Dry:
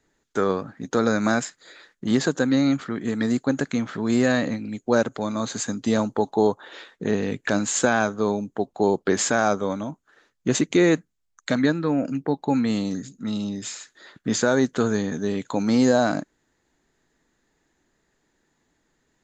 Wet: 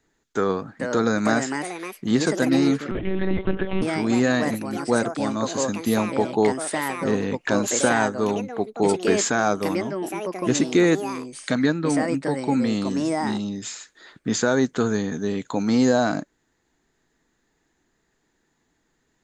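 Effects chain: band-stop 570 Hz, Q 12; ever faster or slower copies 516 ms, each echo +4 st, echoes 2, each echo -6 dB; 2.91–3.82 s: monotone LPC vocoder at 8 kHz 190 Hz

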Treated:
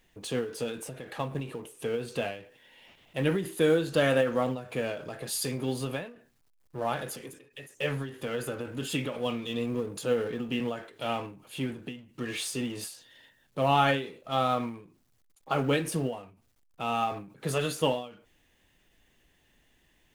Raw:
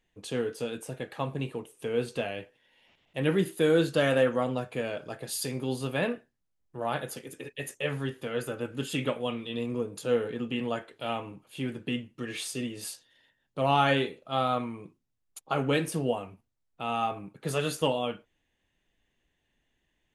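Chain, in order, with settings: companding laws mixed up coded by mu; endings held to a fixed fall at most 110 dB/s

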